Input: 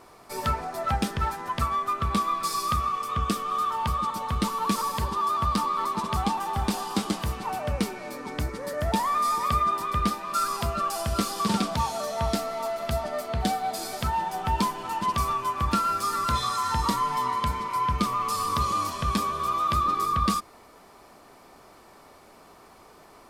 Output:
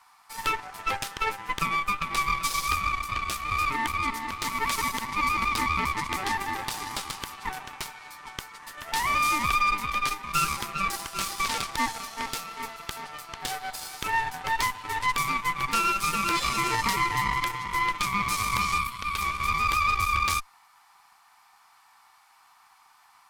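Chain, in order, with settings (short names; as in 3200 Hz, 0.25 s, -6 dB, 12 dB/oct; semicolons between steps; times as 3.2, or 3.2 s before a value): elliptic high-pass 820 Hz, stop band 40 dB; 18.78–19.21 fixed phaser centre 1200 Hz, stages 8; added harmonics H 5 -28 dB, 6 -11 dB, 7 -23 dB, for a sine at -13.5 dBFS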